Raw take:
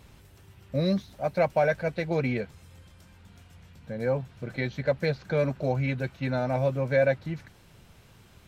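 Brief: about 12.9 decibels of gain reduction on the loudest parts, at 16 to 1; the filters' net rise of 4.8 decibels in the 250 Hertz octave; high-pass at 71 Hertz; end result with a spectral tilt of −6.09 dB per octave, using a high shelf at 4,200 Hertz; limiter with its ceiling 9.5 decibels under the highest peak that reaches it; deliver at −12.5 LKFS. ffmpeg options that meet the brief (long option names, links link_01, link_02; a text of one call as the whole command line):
ffmpeg -i in.wav -af "highpass=71,equalizer=frequency=250:width_type=o:gain=6.5,highshelf=frequency=4200:gain=-4.5,acompressor=threshold=-30dB:ratio=16,volume=27.5dB,alimiter=limit=-2dB:level=0:latency=1" out.wav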